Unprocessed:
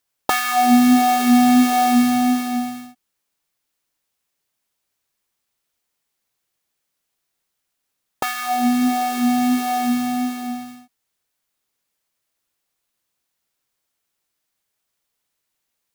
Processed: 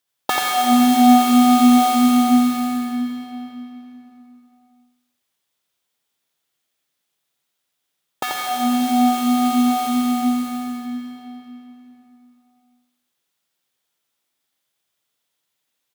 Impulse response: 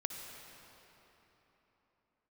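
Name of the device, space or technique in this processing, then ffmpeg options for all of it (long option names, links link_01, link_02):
PA in a hall: -filter_complex "[0:a]highpass=110,equalizer=frequency=3400:width_type=o:width=0.36:gain=5.5,aecho=1:1:86:0.631[link_01];[1:a]atrim=start_sample=2205[link_02];[link_01][link_02]afir=irnorm=-1:irlink=0,volume=-1dB"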